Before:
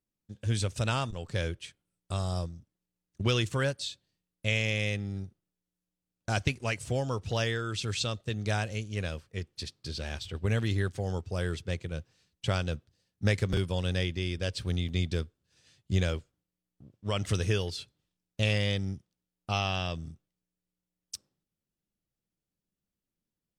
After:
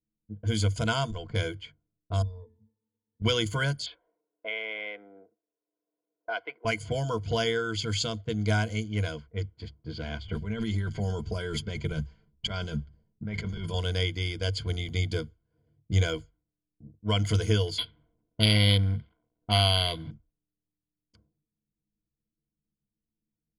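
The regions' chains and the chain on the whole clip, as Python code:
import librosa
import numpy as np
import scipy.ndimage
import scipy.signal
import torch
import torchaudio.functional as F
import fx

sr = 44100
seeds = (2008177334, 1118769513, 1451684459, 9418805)

y = fx.chain(x, sr, fx.crossing_spikes(level_db=-32.0),
    fx.octave_resonator(note='A', decay_s=0.22), at=(2.22, 3.22))
y = fx.chain(y, sr, fx.highpass(hz=470.0, slope=24),
    fx.air_absorb(metres=400.0),
    fx.band_squash(depth_pct=70), at=(3.86, 6.65))
y = fx.chain(y, sr, fx.low_shelf(hz=110.0, db=9.0),
    fx.comb(ms=5.1, depth=0.54),
    fx.over_compress(threshold_db=-33.0, ratio=-1.0), at=(10.28, 13.74))
y = fx.chain(y, sr, fx.law_mismatch(coded='mu'),
    fx.peak_eq(hz=3500.0, db=12.5, octaves=0.79),
    fx.resample_linear(factor=6), at=(17.78, 20.11))
y = fx.env_lowpass(y, sr, base_hz=370.0, full_db=-28.0)
y = fx.ripple_eq(y, sr, per_octave=1.8, db=16)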